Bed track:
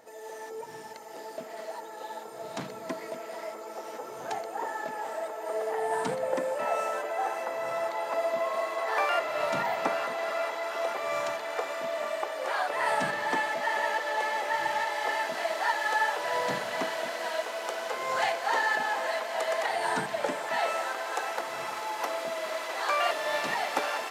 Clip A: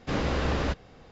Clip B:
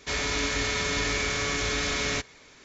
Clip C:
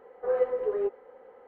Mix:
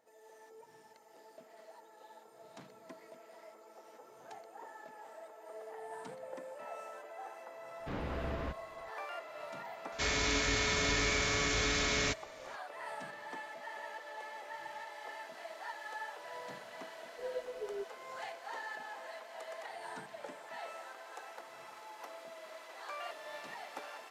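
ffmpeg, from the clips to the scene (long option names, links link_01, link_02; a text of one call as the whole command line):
ffmpeg -i bed.wav -i cue0.wav -i cue1.wav -i cue2.wav -filter_complex "[0:a]volume=-16.5dB[link_01];[1:a]acrossover=split=3300[link_02][link_03];[link_03]acompressor=threshold=-57dB:ratio=4:attack=1:release=60[link_04];[link_02][link_04]amix=inputs=2:normalize=0[link_05];[3:a]asuperstop=centerf=960:order=4:qfactor=0.71[link_06];[link_05]atrim=end=1.11,asetpts=PTS-STARTPTS,volume=-11.5dB,afade=type=in:duration=0.004:curve=hsin,afade=type=out:start_time=1.106:duration=0.004:curve=hsin,adelay=7790[link_07];[2:a]atrim=end=2.64,asetpts=PTS-STARTPTS,volume=-4dB,afade=type=in:duration=0.004:curve=hsin,afade=type=out:start_time=2.636:duration=0.004:curve=hsin,adelay=9920[link_08];[link_06]atrim=end=1.47,asetpts=PTS-STARTPTS,volume=-11.5dB,afade=type=in:duration=0.004:curve=hsin,afade=type=out:start_time=1.466:duration=0.004:curve=hsin,adelay=16950[link_09];[link_01][link_07][link_08][link_09]amix=inputs=4:normalize=0" out.wav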